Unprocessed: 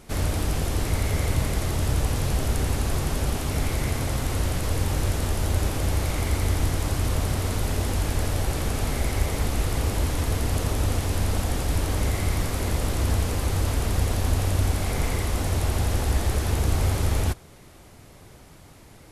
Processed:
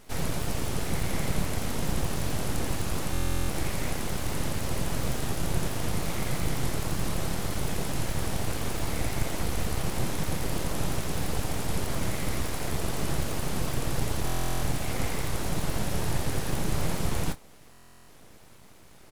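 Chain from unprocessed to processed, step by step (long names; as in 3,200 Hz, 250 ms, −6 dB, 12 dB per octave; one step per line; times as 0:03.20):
double-tracking delay 25 ms −10.5 dB
full-wave rectification
buffer that repeats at 0:03.12/0:14.25/0:17.71, samples 1,024, times 15
level −2.5 dB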